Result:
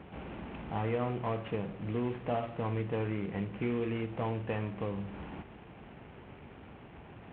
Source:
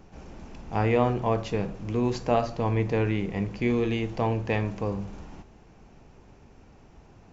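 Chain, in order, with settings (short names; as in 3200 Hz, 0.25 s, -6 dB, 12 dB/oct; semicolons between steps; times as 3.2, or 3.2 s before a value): CVSD 16 kbps; HPF 76 Hz; compressor 2:1, threshold -43 dBFS, peak gain reduction 12.5 dB; gain +4 dB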